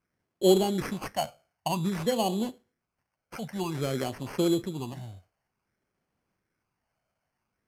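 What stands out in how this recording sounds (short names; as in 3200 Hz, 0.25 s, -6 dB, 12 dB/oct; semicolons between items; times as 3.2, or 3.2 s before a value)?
phasing stages 12, 0.53 Hz, lowest notch 330–1500 Hz; aliases and images of a low sample rate 3700 Hz, jitter 0%; Vorbis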